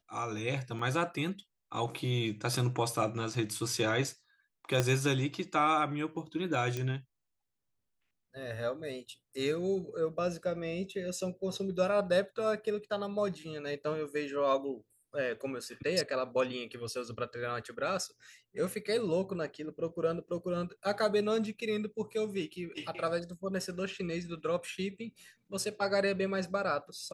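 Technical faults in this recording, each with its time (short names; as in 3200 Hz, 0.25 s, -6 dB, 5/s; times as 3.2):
0.79 gap 3.4 ms
4.8 pop -13 dBFS
6.77 pop -21 dBFS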